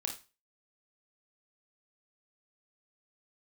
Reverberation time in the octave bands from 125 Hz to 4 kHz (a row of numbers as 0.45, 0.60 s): 0.40, 0.30, 0.30, 0.30, 0.30, 0.30 s